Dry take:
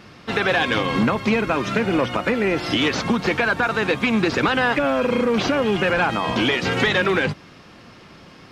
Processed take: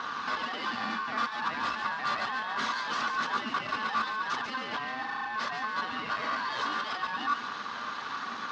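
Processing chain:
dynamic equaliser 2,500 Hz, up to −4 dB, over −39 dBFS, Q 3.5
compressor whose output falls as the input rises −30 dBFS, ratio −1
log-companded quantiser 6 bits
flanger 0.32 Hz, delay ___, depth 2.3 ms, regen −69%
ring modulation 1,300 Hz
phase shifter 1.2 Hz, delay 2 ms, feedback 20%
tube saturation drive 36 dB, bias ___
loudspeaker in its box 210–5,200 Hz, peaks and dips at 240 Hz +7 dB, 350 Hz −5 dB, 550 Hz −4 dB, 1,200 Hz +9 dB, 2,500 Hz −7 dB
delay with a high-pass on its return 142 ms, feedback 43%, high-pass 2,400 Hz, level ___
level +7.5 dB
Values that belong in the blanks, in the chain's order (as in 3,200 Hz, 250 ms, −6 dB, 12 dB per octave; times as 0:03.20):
0.4 ms, 0.55, −7 dB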